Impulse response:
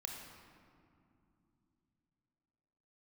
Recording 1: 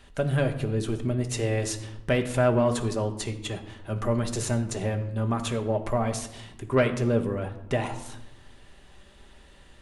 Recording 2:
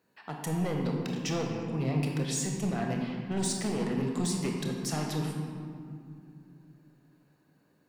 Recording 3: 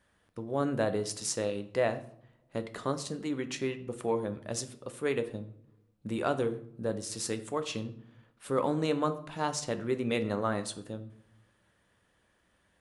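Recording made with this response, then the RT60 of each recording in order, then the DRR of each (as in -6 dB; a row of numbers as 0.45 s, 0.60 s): 2; no single decay rate, 2.8 s, no single decay rate; 5.0 dB, 1.0 dB, 8.5 dB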